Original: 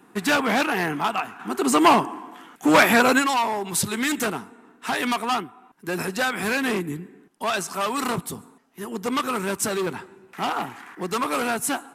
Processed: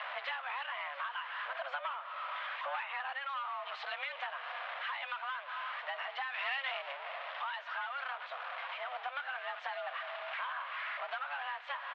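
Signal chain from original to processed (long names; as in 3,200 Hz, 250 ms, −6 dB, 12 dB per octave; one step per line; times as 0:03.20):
converter with a step at zero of −24.5 dBFS
single-sideband voice off tune +270 Hz 450–3,100 Hz
downward compressor 12 to 1, threshold −29 dBFS, peak gain reduction 19 dB
0:06.34–0:06.92: high-shelf EQ 2,300 Hz +9 dB
on a send: single-tap delay 699 ms −18 dB
on the sum: level −7 dB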